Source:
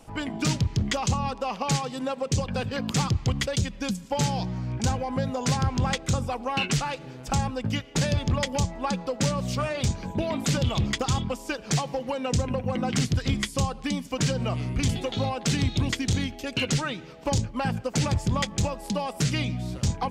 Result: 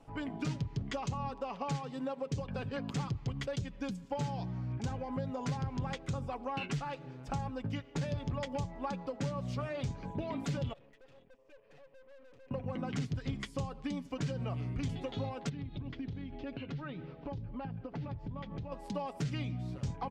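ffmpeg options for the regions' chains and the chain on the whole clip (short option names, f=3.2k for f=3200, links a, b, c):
-filter_complex "[0:a]asettb=1/sr,asplit=3[a][b][c];[a]atrim=end=10.734[d];[b]atrim=start=10.73:end=12.51,asetpts=PTS-STARTPTS,afade=t=in:d=0.004:c=qsin,afade=t=out:st=1.776:d=0.004:c=qsin,asplit=3[e][f][g];[e]bandpass=f=530:t=q:w=8,volume=0dB[h];[f]bandpass=f=1.84k:t=q:w=8,volume=-6dB[i];[g]bandpass=f=2.48k:t=q:w=8,volume=-9dB[j];[h][i][j]amix=inputs=3:normalize=0,aeval=exprs='(tanh(282*val(0)+0.8)-tanh(0.8))/282':c=same[k];[c]atrim=start=12.506[l];[d][k]acrossfade=d=0.004:c1=hsin:c2=qsin[m];[m][l]acrossfade=d=0.004:c1=qsin:c2=hsin,asettb=1/sr,asplit=3[n][o][p];[n]atrim=end=15.494[q];[o]atrim=start=15.49:end=18.72,asetpts=PTS-STARTPTS,afade=t=in:d=0.004:c=qsin,afade=t=out:st=3.226:d=0.004:c=qsin,lowpass=f=4.3k:w=0.5412,lowpass=f=4.3k:w=1.3066,lowshelf=f=420:g=7.5,acompressor=threshold=-30dB:ratio=10:attack=3.2:release=140:knee=1:detection=peak[r];[p]atrim=start=18.716[s];[q][r]acrossfade=d=0.004:c1=hsin:c2=qsin[t];[t][s]acrossfade=d=0.004:c1=qsin:c2=hsin,lowpass=f=1.9k:p=1,aecho=1:1:7.1:0.37,acompressor=threshold=-26dB:ratio=2.5,volume=-7.5dB"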